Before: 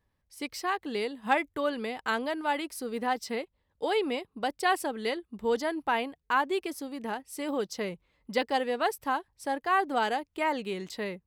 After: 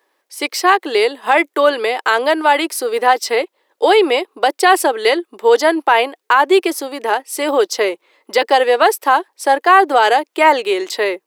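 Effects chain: Chebyshev high-pass 340 Hz, order 4; loudness maximiser +19.5 dB; trim -1 dB

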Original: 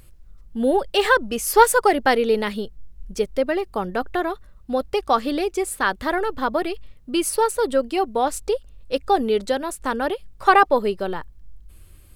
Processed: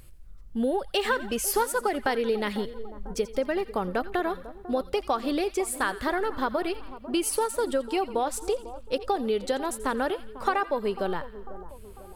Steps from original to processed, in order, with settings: compression, threshold -21 dBFS, peak gain reduction 13 dB; on a send: two-band feedback delay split 1.2 kHz, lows 497 ms, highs 86 ms, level -15 dB; on the sum: trim -1.5 dB

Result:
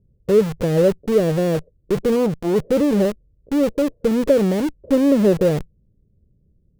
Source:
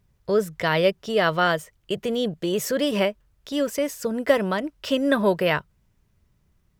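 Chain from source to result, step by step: Chebyshev low-pass 520 Hz, order 4; in parallel at -6.5 dB: Schmitt trigger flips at -38 dBFS; 2.16–2.56 s: on the sum: transformer saturation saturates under 350 Hz; trim +6 dB

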